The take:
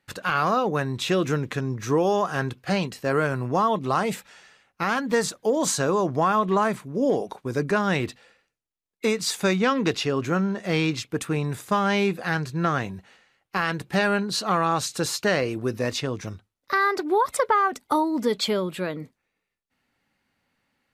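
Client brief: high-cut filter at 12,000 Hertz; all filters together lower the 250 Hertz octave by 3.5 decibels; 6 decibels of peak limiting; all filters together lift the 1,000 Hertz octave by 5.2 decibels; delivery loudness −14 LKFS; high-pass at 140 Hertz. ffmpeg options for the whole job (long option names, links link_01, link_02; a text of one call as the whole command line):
ffmpeg -i in.wav -af "highpass=140,lowpass=12000,equalizer=frequency=250:width_type=o:gain=-4.5,equalizer=frequency=1000:width_type=o:gain=6.5,volume=10.5dB,alimiter=limit=-1dB:level=0:latency=1" out.wav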